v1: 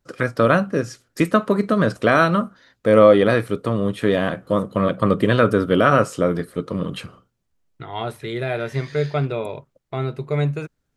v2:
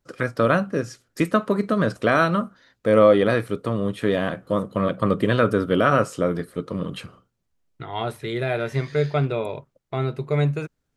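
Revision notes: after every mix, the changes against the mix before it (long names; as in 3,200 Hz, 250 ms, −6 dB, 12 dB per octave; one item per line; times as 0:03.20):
first voice −3.0 dB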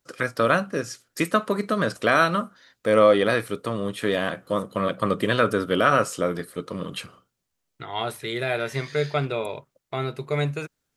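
master: add spectral tilt +2 dB per octave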